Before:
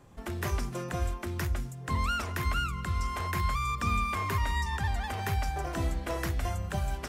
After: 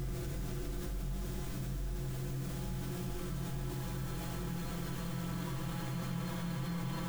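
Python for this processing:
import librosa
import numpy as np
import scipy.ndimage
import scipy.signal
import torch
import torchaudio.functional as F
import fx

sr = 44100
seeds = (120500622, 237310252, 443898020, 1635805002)

p1 = fx.lower_of_two(x, sr, delay_ms=6.2)
p2 = fx.doppler_pass(p1, sr, speed_mps=7, closest_m=3.4, pass_at_s=1.97)
p3 = fx.high_shelf(p2, sr, hz=2700.0, db=-9.0)
p4 = p3 + 0.75 * np.pad(p3, (int(5.9 * sr / 1000.0), 0))[:len(p3)]
p5 = fx.dynamic_eq(p4, sr, hz=850.0, q=1.2, threshold_db=-52.0, ratio=4.0, max_db=-5)
p6 = fx.ladder_lowpass(p5, sr, hz=7600.0, resonance_pct=30)
p7 = fx.dmg_noise_colour(p6, sr, seeds[0], colour='white', level_db=-62.0)
p8 = fx.paulstretch(p7, sr, seeds[1], factor=48.0, window_s=0.5, from_s=1.63)
p9 = p8 + fx.echo_single(p8, sr, ms=87, db=-5.5, dry=0)
p10 = fx.env_flatten(p9, sr, amount_pct=70)
y = F.gain(torch.from_numpy(p10), 2.5).numpy()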